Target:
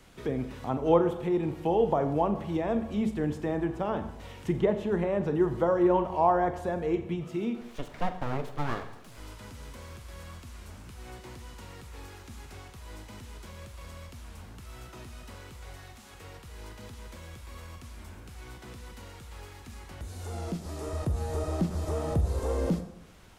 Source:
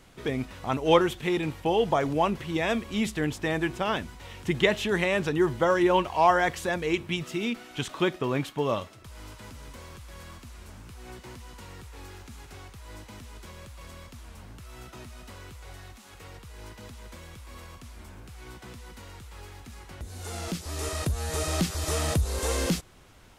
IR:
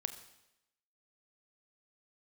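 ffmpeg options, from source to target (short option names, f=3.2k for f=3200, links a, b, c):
-filter_complex "[0:a]acrossover=split=250|1100[a][b][c];[c]acompressor=threshold=-48dB:ratio=12[d];[a][b][d]amix=inputs=3:normalize=0,asettb=1/sr,asplit=3[e][f][g];[e]atrim=end=7.614[h];[f]atrim=start=7.61:end=9.18,asetpts=PTS-STARTPTS,afade=t=in:d=0.004:c=qsin,afade=t=out:st=1.566:d=0.004:c=qsin,aeval=exprs='abs(val(0))':c=same[i];[g]atrim=start=9.176[j];[h][i]acrossfade=d=0.004:c1=hsin:c2=qsin[k];[k][j]acrossfade=d=0.004:c1=qsin:c2=hsin[l];[1:a]atrim=start_sample=2205[m];[l][m]afir=irnorm=-1:irlink=0"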